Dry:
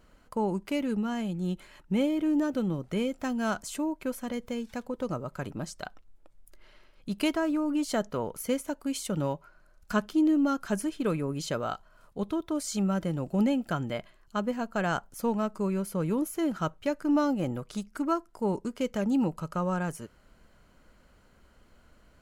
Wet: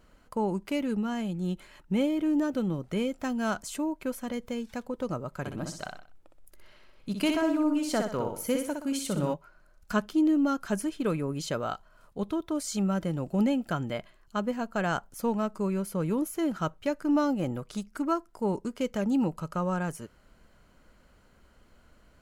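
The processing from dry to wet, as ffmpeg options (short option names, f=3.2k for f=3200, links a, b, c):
-filter_complex "[0:a]asettb=1/sr,asplit=3[a][b][c];[a]atrim=end=5.394[d];[b]atrim=start=5.39:end=9.34,asetpts=PTS-STARTPTS,afade=t=in:d=0.004:c=qsin,afade=t=out:st=3.946:d=0.004:c=qsin,aecho=1:1:62|124|186|248:0.562|0.202|0.0729|0.0262,atrim=end_sample=174195[e];[c]atrim=start=9.336[f];[d][e]acrossfade=d=0.004:c1=hsin:c2=qsin[g];[g][f]acrossfade=d=0.004:c1=qsin:c2=hsin"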